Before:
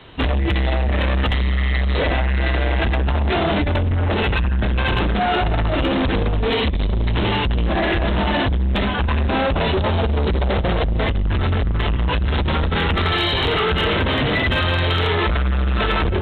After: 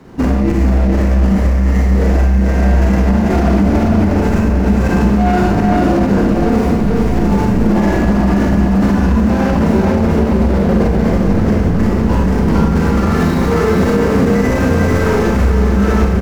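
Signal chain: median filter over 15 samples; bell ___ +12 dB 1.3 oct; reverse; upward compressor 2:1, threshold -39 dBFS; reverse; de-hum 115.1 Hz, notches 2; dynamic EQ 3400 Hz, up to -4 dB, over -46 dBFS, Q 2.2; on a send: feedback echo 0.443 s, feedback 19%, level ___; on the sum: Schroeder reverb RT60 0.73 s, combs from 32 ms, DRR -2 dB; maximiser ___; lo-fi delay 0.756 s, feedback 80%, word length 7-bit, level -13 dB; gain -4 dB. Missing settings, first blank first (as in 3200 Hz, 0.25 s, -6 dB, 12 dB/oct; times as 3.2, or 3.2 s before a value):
220 Hz, -3.5 dB, +3.5 dB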